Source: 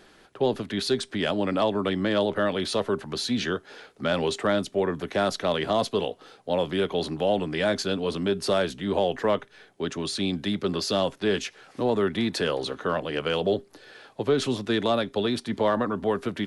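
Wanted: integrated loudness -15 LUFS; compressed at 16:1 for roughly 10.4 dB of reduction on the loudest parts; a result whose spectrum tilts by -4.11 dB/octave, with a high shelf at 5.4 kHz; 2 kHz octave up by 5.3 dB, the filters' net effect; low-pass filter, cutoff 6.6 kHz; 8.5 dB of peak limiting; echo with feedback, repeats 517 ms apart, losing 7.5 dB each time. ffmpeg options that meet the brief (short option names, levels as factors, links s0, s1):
-af "lowpass=6600,equalizer=f=2000:t=o:g=6,highshelf=f=5400:g=7.5,acompressor=threshold=0.0398:ratio=16,alimiter=limit=0.0668:level=0:latency=1,aecho=1:1:517|1034|1551|2068|2585:0.422|0.177|0.0744|0.0312|0.0131,volume=8.41"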